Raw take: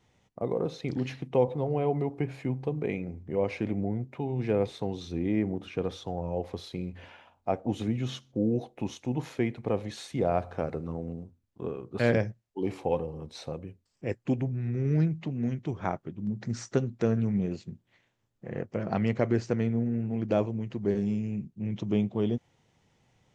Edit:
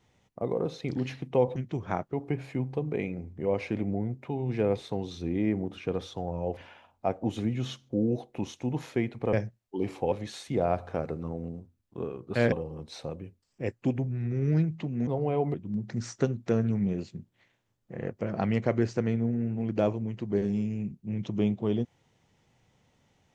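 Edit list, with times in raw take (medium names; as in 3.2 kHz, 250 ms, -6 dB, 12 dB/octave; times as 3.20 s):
1.56–2.03 s: swap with 15.50–16.07 s
6.47–7.00 s: delete
12.16–12.95 s: move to 9.76 s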